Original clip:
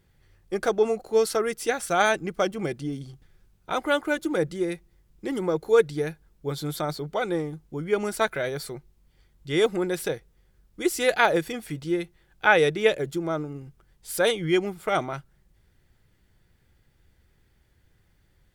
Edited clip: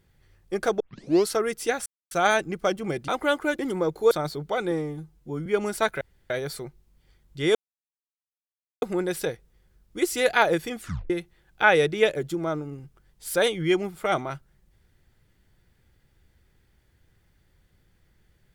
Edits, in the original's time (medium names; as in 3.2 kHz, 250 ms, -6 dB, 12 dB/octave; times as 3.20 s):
0.80 s: tape start 0.46 s
1.86 s: insert silence 0.25 s
2.83–3.71 s: delete
4.22–5.26 s: delete
5.78–6.75 s: delete
7.35–7.85 s: stretch 1.5×
8.40 s: insert room tone 0.29 s
9.65 s: insert silence 1.27 s
11.62 s: tape stop 0.31 s